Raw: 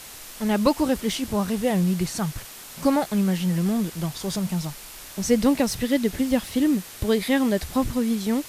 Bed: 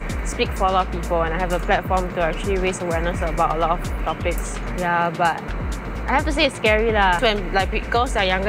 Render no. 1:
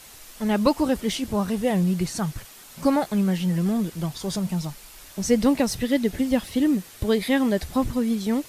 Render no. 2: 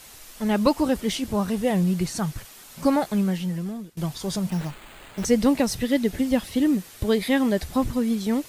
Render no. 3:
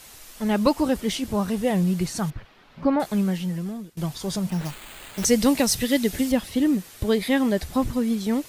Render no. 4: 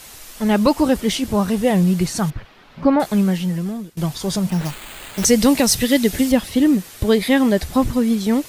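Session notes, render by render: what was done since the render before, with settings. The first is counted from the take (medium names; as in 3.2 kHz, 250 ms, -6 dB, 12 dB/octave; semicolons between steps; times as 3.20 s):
noise reduction 6 dB, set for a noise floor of -42 dBFS
3.15–3.97 s: fade out, to -21 dB; 4.50–5.25 s: sample-rate reducer 5.6 kHz
2.30–3.00 s: distance through air 330 m; 4.65–6.32 s: treble shelf 2.8 kHz +9 dB
trim +6 dB; peak limiter -3 dBFS, peak gain reduction 3 dB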